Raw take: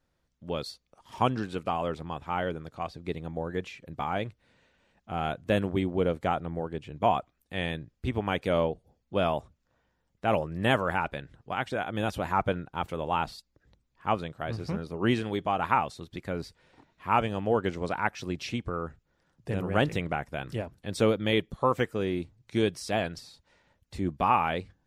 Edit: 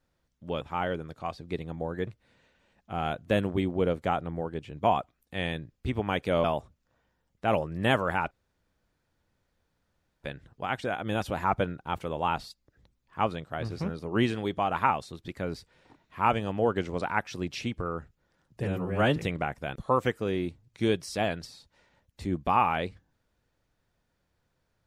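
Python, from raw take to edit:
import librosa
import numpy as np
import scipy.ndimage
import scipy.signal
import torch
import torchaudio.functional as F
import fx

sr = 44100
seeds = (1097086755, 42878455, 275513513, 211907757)

y = fx.edit(x, sr, fx.cut(start_s=0.61, length_s=1.56),
    fx.cut(start_s=3.63, length_s=0.63),
    fx.cut(start_s=8.63, length_s=0.61),
    fx.insert_room_tone(at_s=11.11, length_s=1.92),
    fx.stretch_span(start_s=19.52, length_s=0.35, factor=1.5),
    fx.cut(start_s=20.46, length_s=1.03), tone=tone)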